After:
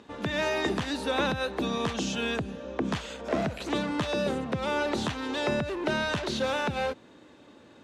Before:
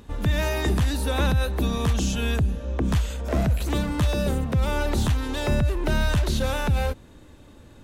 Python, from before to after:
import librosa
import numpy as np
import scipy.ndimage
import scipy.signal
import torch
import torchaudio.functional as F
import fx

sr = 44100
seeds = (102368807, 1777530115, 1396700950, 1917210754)

y = fx.bandpass_edges(x, sr, low_hz=240.0, high_hz=5400.0)